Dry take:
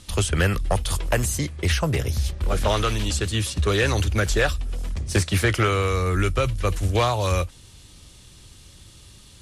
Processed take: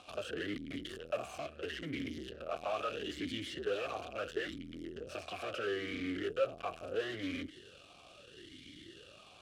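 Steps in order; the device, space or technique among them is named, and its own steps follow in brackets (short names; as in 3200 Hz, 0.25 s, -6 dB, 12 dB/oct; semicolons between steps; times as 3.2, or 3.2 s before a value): talk box (tube stage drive 38 dB, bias 0.6; vowel sweep a-i 0.75 Hz); gain +14.5 dB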